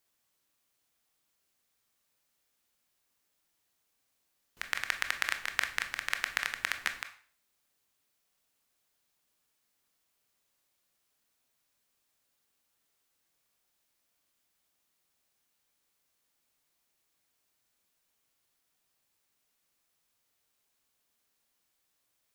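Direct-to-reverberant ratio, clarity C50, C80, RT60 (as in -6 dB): 7.0 dB, 12.0 dB, 16.0 dB, 0.45 s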